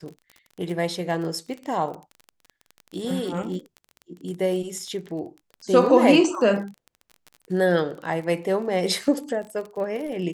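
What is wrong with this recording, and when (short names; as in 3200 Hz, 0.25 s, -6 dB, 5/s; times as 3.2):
crackle 28/s -32 dBFS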